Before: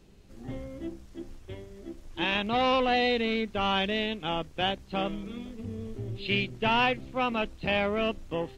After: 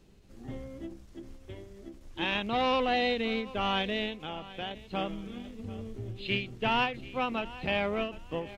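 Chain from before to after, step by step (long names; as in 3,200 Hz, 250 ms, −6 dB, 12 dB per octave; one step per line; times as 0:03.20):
0:04.22–0:04.71: downward compressor 2 to 1, threshold −37 dBFS, peak gain reduction 8 dB
repeating echo 737 ms, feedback 25%, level −18 dB
every ending faded ahead of time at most 130 dB per second
level −2.5 dB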